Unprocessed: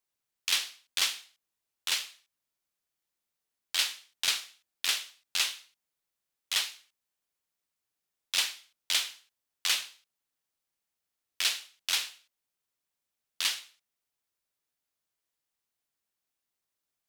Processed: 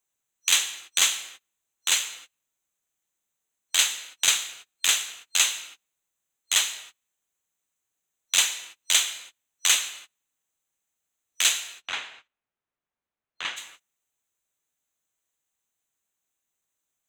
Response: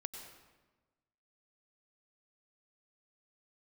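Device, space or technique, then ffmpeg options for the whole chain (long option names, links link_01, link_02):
keyed gated reverb: -filter_complex "[0:a]asplit=3[link_01][link_02][link_03];[link_01]afade=type=out:start_time=11.74:duration=0.02[link_04];[link_02]lowpass=2000,afade=type=in:start_time=11.74:duration=0.02,afade=type=out:start_time=13.56:duration=0.02[link_05];[link_03]afade=type=in:start_time=13.56:duration=0.02[link_06];[link_04][link_05][link_06]amix=inputs=3:normalize=0,asplit=3[link_07][link_08][link_09];[1:a]atrim=start_sample=2205[link_10];[link_08][link_10]afir=irnorm=-1:irlink=0[link_11];[link_09]apad=whole_len=753435[link_12];[link_11][link_12]sidechaingate=range=-33dB:threshold=-59dB:ratio=16:detection=peak,volume=-2dB[link_13];[link_07][link_13]amix=inputs=2:normalize=0,superequalizer=14b=0.398:15b=2.24,volume=2.5dB"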